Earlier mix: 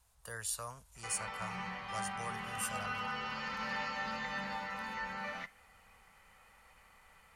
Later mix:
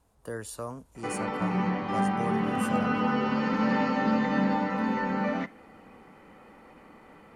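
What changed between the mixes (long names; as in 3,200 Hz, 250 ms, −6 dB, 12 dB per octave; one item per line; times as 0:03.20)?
speech −5.0 dB
master: remove guitar amp tone stack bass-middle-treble 10-0-10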